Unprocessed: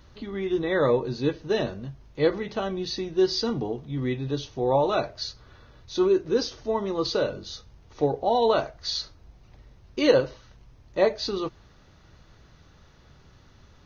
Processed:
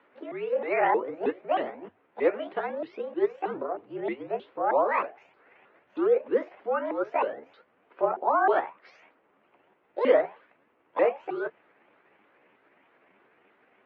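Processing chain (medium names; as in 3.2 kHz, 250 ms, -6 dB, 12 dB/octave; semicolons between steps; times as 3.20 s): sawtooth pitch modulation +11 st, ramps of 314 ms; mistuned SSB -55 Hz 370–2700 Hz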